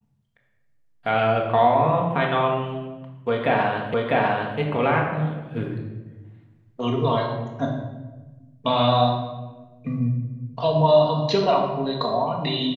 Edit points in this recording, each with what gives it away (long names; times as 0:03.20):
0:03.94: the same again, the last 0.65 s